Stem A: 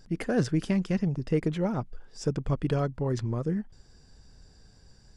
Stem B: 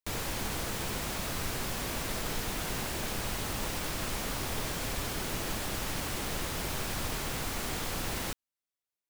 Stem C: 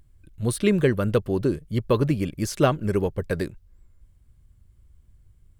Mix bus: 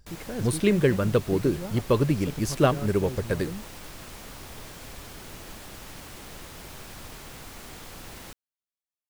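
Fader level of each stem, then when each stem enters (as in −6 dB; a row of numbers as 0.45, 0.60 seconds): −8.5, −8.0, −1.0 decibels; 0.00, 0.00, 0.00 seconds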